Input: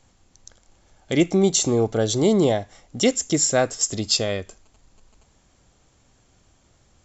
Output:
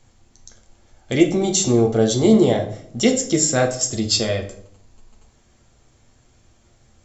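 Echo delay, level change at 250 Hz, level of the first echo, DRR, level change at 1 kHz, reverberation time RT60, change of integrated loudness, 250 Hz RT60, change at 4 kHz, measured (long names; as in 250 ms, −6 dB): no echo audible, +4.0 dB, no echo audible, 2.0 dB, +1.5 dB, 0.60 s, +2.5 dB, 0.85 s, +1.5 dB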